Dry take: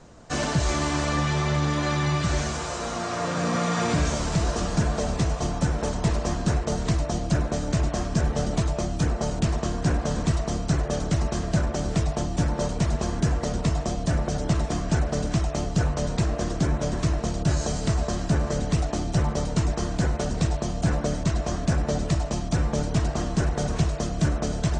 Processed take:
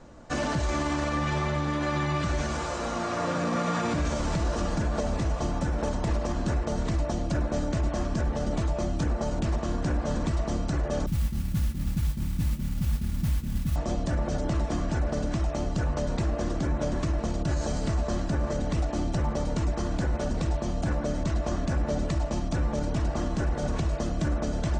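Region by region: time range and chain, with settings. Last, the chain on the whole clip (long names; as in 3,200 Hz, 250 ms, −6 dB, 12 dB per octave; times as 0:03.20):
0:11.06–0:13.76: inverse Chebyshev low-pass filter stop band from 950 Hz, stop band 70 dB + noise that follows the level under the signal 15 dB
whole clip: high-shelf EQ 3,400 Hz −7.5 dB; comb filter 3.5 ms, depth 31%; brickwall limiter −19 dBFS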